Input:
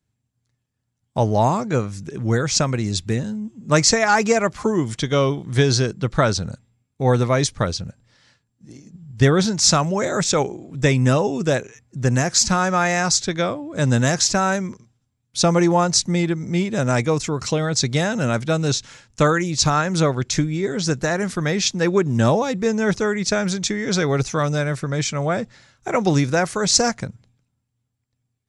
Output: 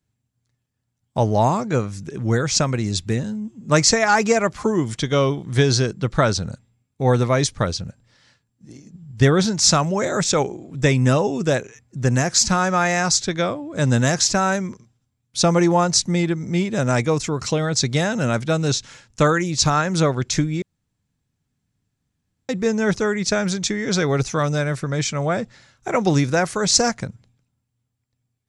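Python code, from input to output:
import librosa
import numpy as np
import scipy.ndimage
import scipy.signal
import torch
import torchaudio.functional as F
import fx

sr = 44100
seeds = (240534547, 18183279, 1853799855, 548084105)

y = fx.edit(x, sr, fx.room_tone_fill(start_s=20.62, length_s=1.87), tone=tone)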